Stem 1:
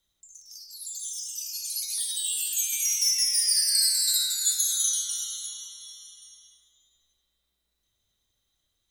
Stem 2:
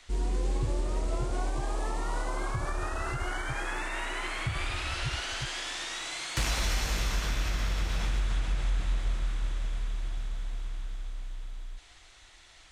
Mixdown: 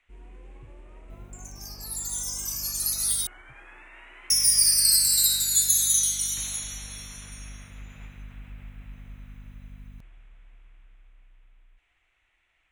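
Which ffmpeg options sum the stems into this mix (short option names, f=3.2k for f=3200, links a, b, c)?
-filter_complex "[0:a]highshelf=f=12k:g=6.5,aeval=exprs='val(0)+0.00891*(sin(2*PI*50*n/s)+sin(2*PI*2*50*n/s)/2+sin(2*PI*3*50*n/s)/3+sin(2*PI*4*50*n/s)/4+sin(2*PI*5*50*n/s)/5)':c=same,adelay=1100,volume=-2.5dB,asplit=3[a][b][c];[a]atrim=end=3.27,asetpts=PTS-STARTPTS,afade=t=out:st=3.266:d=0.004:c=hsin[d];[b]atrim=start=3.27:end=4.3,asetpts=PTS-STARTPTS,volume=0[e];[c]atrim=start=4.3,asetpts=PTS-STARTPTS,afade=t=in:d=0.004:c=hsin[f];[d][e][f]concat=n=3:v=0:a=1[g];[1:a]highshelf=f=3.4k:t=q:w=3:g=-11,volume=-17.5dB[h];[g][h]amix=inputs=2:normalize=0,highshelf=f=6k:g=7"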